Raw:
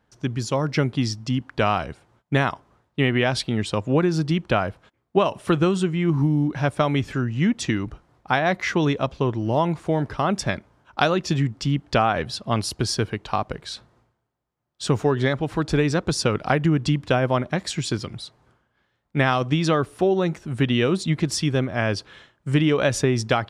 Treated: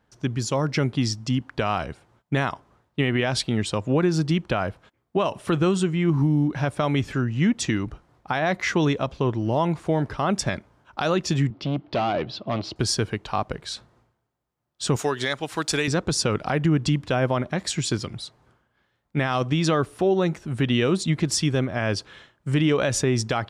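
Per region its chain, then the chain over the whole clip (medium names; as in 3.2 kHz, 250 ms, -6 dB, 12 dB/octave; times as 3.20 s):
11.50–12.76 s: hard clipper -22.5 dBFS + cabinet simulation 110–4100 Hz, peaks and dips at 330 Hz +8 dB, 630 Hz +5 dB, 1.7 kHz -6 dB
14.96–15.88 s: tilt EQ +3.5 dB/octave + transient shaper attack +1 dB, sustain -3 dB
whole clip: peak limiter -12 dBFS; dynamic bell 7.4 kHz, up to +4 dB, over -45 dBFS, Q 1.6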